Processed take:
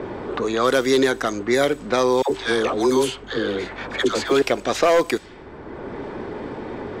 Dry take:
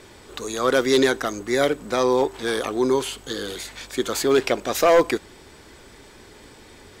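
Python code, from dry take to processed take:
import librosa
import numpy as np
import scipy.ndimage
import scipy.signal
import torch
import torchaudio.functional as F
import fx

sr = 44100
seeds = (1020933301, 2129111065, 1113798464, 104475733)

y = fx.env_lowpass(x, sr, base_hz=880.0, full_db=-17.5)
y = fx.dispersion(y, sr, late='lows', ms=84.0, hz=650.0, at=(2.22, 4.42))
y = fx.band_squash(y, sr, depth_pct=70)
y = F.gain(torch.from_numpy(y), 1.5).numpy()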